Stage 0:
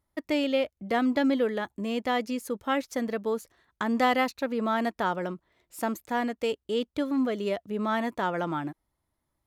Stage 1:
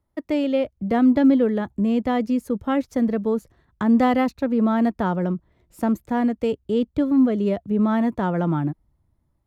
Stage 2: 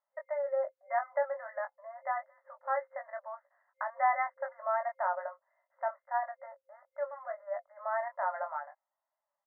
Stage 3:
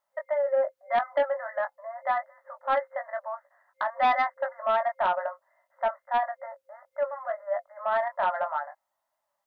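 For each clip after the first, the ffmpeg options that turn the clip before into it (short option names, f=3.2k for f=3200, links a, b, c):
-filter_complex "[0:a]tiltshelf=f=1.3k:g=5.5,acrossover=split=200|1100[a][b][c];[a]dynaudnorm=f=420:g=3:m=11.5dB[d];[d][b][c]amix=inputs=3:normalize=0"
-filter_complex "[0:a]afftfilt=real='re*between(b*sr/4096,530,2100)':imag='im*between(b*sr/4096,530,2100)':win_size=4096:overlap=0.75,asplit=2[a][b];[b]adelay=21,volume=-5.5dB[c];[a][c]amix=inputs=2:normalize=0,volume=-6dB"
-af "aeval=exprs='0.141*sin(PI/2*1.58*val(0)/0.141)':c=same"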